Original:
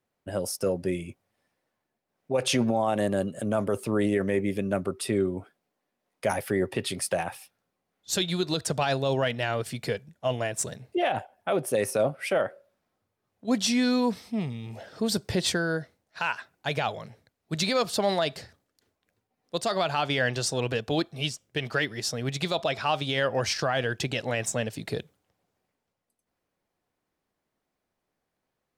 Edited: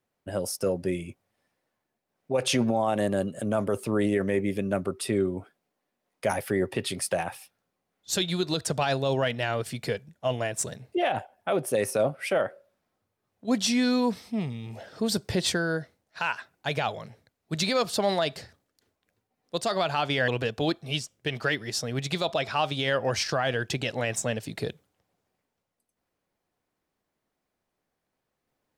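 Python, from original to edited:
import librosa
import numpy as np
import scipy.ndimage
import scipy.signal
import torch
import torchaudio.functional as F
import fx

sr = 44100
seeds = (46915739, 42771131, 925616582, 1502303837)

y = fx.edit(x, sr, fx.cut(start_s=20.28, length_s=0.3), tone=tone)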